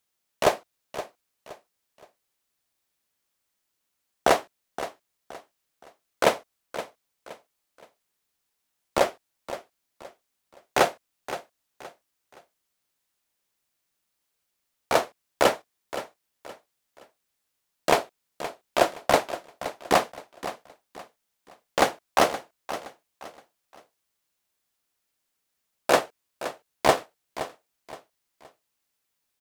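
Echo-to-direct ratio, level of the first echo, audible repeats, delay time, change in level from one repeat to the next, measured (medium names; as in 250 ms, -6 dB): -12.5 dB, -13.0 dB, 3, 520 ms, -9.5 dB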